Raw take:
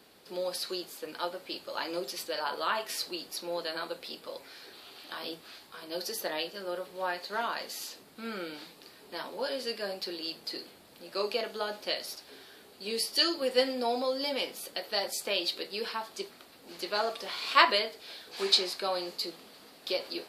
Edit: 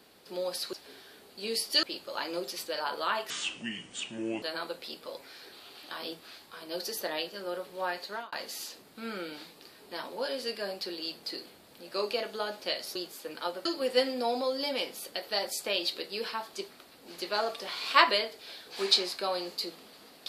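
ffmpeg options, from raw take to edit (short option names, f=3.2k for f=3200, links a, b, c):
-filter_complex "[0:a]asplit=8[a][b][c][d][e][f][g][h];[a]atrim=end=0.732[i];[b]atrim=start=12.158:end=13.262[j];[c]atrim=start=1.428:end=2.904[k];[d]atrim=start=2.9:end=3.63,asetpts=PTS-STARTPTS,asetrate=28665,aresample=44100[l];[e]atrim=start=3.626:end=7.53,asetpts=PTS-STARTPTS,afade=t=out:st=3.634:d=0.27[m];[f]atrim=start=7.53:end=12.162,asetpts=PTS-STARTPTS,afade=t=in:d=0.004:c=hsin[n];[g]atrim=start=0.728:end=1.432[o];[h]atrim=start=13.258[p];[i][j]acrossfade=d=0.004:c1=hsin:c2=hsin[q];[q][k]acrossfade=d=0.004:c1=hsin:c2=hsin[r];[r][l]acrossfade=d=0.004:c1=hsin:c2=hsin[s];[m][n]concat=n=2:v=0:a=1[t];[s][t]acrossfade=d=0.004:c1=hsin:c2=hsin[u];[u][o]acrossfade=d=0.004:c1=hsin:c2=hsin[v];[v][p]acrossfade=d=0.004:c1=hsin:c2=hsin"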